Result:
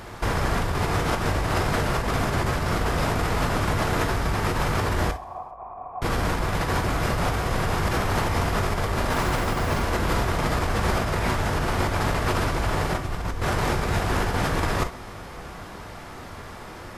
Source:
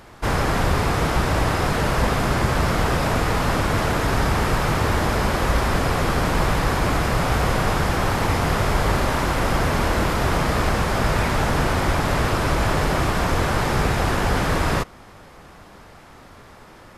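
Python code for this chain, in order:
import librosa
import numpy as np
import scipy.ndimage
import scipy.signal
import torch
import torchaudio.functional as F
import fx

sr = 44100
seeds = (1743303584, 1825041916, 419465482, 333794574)

y = fx.low_shelf(x, sr, hz=98.0, db=9.5, at=(12.95, 13.41))
y = fx.over_compress(y, sr, threshold_db=-25.0, ratio=-1.0)
y = fx.formant_cascade(y, sr, vowel='a', at=(5.11, 6.02))
y = fx.dmg_noise_colour(y, sr, seeds[0], colour='violet', level_db=-54.0, at=(9.1, 9.81), fade=0.02)
y = fx.echo_feedback(y, sr, ms=132, feedback_pct=54, wet_db=-24)
y = fx.rev_gated(y, sr, seeds[1], gate_ms=80, shape='flat', drr_db=7.5)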